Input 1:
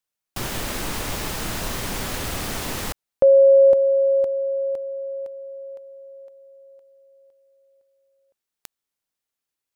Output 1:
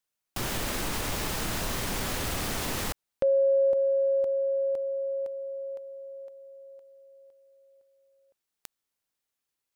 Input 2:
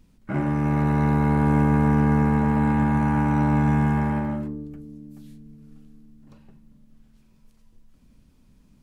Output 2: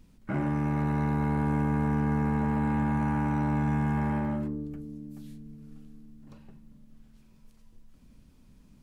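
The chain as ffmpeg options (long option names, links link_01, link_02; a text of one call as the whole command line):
ffmpeg -i in.wav -af "acompressor=threshold=-26dB:ratio=2.5:attack=1.2:release=70:knee=6:detection=rms" out.wav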